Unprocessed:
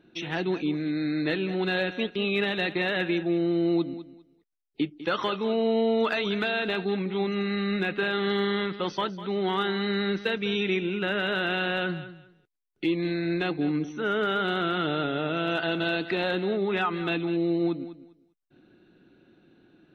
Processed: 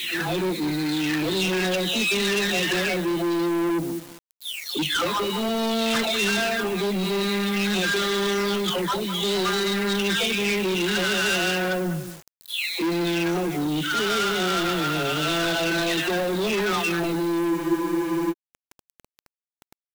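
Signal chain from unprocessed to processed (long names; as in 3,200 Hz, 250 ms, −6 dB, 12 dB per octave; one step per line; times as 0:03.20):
every frequency bin delayed by itself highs early, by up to 780 ms
leveller curve on the samples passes 2
bit reduction 8 bits
leveller curve on the samples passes 2
high-shelf EQ 3,900 Hz +11.5 dB
frozen spectrum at 0:17.53, 0.78 s
level −6 dB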